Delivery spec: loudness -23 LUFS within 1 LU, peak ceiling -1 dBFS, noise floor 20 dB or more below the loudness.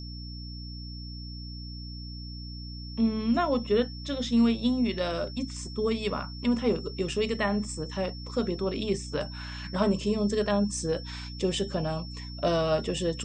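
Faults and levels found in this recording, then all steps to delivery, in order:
hum 60 Hz; harmonics up to 300 Hz; hum level -37 dBFS; steady tone 5400 Hz; tone level -44 dBFS; loudness -29.0 LUFS; peak -13.0 dBFS; loudness target -23.0 LUFS
-> notches 60/120/180/240/300 Hz; notch 5400 Hz, Q 30; gain +6 dB

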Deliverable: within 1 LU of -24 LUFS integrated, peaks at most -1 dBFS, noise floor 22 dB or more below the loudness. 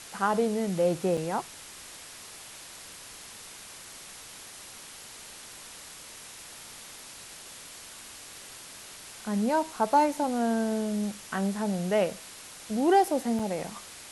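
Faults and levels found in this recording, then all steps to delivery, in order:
dropouts 2; longest dropout 4.8 ms; noise floor -46 dBFS; noise floor target -50 dBFS; loudness -28.0 LUFS; peak -11.5 dBFS; loudness target -24.0 LUFS
-> interpolate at 1.17/13.39, 4.8 ms; denoiser 6 dB, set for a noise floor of -46 dBFS; gain +4 dB

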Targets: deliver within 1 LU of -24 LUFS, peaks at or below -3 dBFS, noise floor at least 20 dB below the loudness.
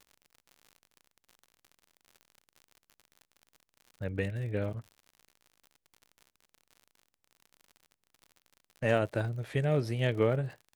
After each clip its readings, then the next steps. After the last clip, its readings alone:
ticks 61/s; loudness -32.0 LUFS; peak -13.5 dBFS; loudness target -24.0 LUFS
-> de-click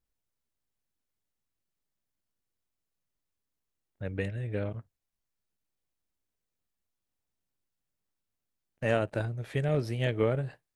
ticks 0/s; loudness -31.5 LUFS; peak -13.5 dBFS; loudness target -24.0 LUFS
-> gain +7.5 dB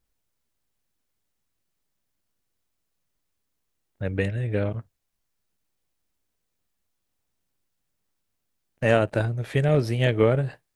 loudness -24.0 LUFS; peak -6.0 dBFS; noise floor -78 dBFS

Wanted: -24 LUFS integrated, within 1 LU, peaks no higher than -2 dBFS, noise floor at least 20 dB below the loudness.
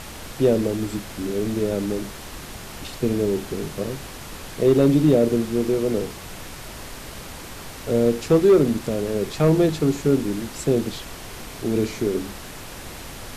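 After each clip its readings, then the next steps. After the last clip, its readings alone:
clipped 0.6%; flat tops at -9.0 dBFS; noise floor -38 dBFS; noise floor target -42 dBFS; loudness -22.0 LUFS; peak -9.0 dBFS; loudness target -24.0 LUFS
-> clip repair -9 dBFS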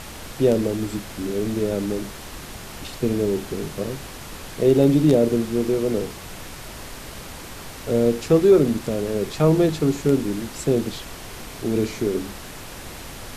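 clipped 0.0%; noise floor -38 dBFS; noise floor target -42 dBFS
-> noise print and reduce 6 dB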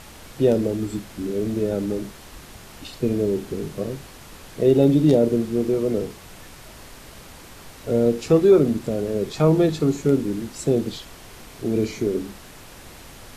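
noise floor -44 dBFS; loudness -21.5 LUFS; peak -5.0 dBFS; loudness target -24.0 LUFS
-> gain -2.5 dB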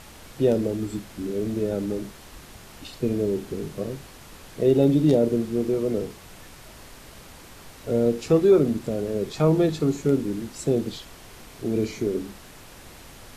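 loudness -24.0 LUFS; peak -7.5 dBFS; noise floor -46 dBFS

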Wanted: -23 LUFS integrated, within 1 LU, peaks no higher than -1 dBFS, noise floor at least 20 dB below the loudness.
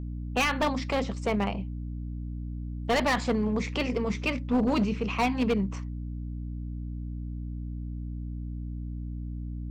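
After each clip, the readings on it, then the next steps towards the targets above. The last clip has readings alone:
clipped 1.5%; flat tops at -20.0 dBFS; hum 60 Hz; harmonics up to 300 Hz; hum level -33 dBFS; loudness -30.5 LUFS; peak -20.0 dBFS; loudness target -23.0 LUFS
-> clip repair -20 dBFS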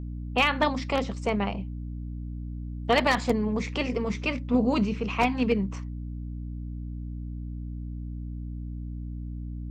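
clipped 0.0%; hum 60 Hz; harmonics up to 300 Hz; hum level -32 dBFS
-> notches 60/120/180/240/300 Hz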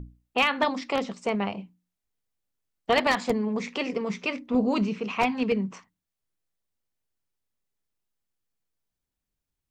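hum none; loudness -27.0 LUFS; peak -9.5 dBFS; loudness target -23.0 LUFS
-> gain +4 dB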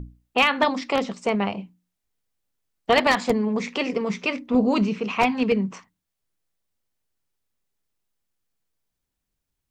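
loudness -23.0 LUFS; peak -6.0 dBFS; noise floor -82 dBFS

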